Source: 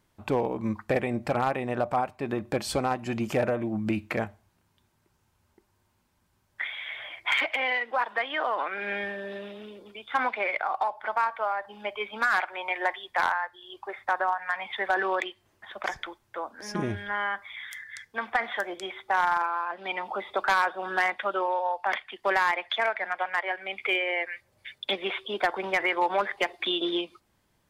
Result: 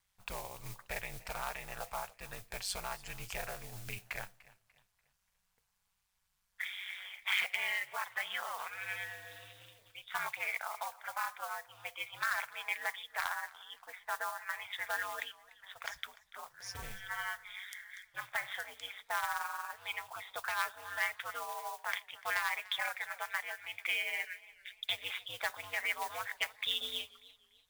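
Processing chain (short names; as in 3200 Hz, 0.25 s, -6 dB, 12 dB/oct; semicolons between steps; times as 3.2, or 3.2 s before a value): ring modulator 96 Hz; modulation noise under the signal 20 dB; passive tone stack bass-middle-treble 10-0-10; warbling echo 0.292 s, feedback 36%, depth 94 cents, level -20.5 dB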